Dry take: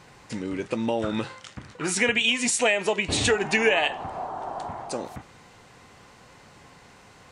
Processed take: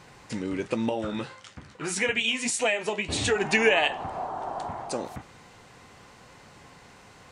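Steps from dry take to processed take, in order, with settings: 0.89–3.36 s: flange 1.7 Hz, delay 10 ms, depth 5.4 ms, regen -37%

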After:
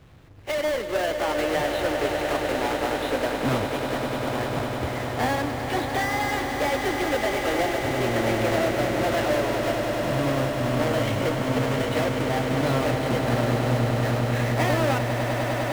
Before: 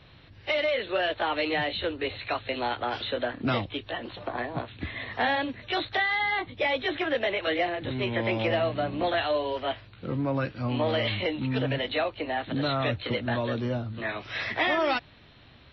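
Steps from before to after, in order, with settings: square wave that keeps the level; treble shelf 3.4 kHz -10 dB; echo with a slow build-up 100 ms, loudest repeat 8, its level -10 dB; trim -2.5 dB

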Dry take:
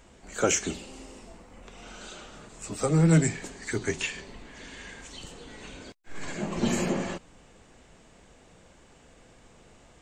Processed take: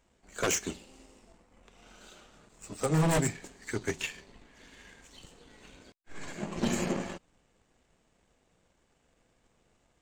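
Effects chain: power-law waveshaper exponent 1.4; wavefolder -21.5 dBFS; trim +2 dB

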